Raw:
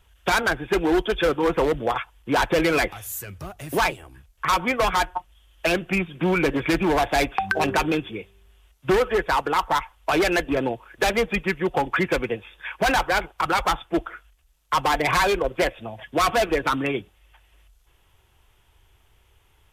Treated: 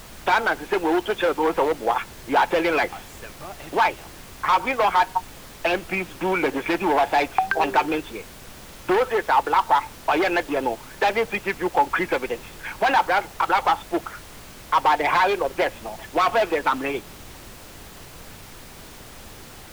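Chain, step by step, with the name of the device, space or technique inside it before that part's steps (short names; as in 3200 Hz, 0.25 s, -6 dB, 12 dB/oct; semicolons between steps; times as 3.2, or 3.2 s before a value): horn gramophone (BPF 290–3600 Hz; bell 860 Hz +7 dB 0.33 oct; wow and flutter; pink noise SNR 18 dB)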